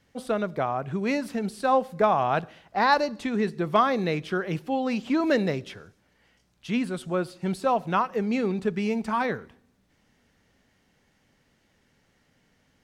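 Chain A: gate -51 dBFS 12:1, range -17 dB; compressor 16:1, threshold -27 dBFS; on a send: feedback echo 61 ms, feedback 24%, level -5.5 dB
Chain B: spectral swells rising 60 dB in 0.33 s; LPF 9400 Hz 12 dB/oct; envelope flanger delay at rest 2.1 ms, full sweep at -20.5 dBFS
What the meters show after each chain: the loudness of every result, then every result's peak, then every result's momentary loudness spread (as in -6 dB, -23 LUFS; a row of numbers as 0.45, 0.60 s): -31.5, -27.5 LUFS; -16.5, -9.0 dBFS; 4, 7 LU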